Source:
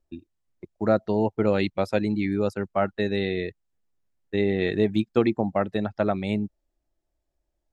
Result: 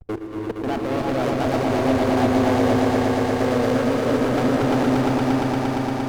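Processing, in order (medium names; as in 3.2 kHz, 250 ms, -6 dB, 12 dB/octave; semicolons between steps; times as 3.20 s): local Wiener filter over 41 samples; compressor with a negative ratio -33 dBFS, ratio -1; peaking EQ 110 Hz -9.5 dB 0.49 oct; level held to a coarse grid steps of 21 dB; waveshaping leveller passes 5; wide varispeed 1.27×; echo with a slow build-up 116 ms, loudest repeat 5, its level -5 dB; gated-style reverb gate 360 ms rising, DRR 1 dB; sliding maximum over 9 samples; trim +7 dB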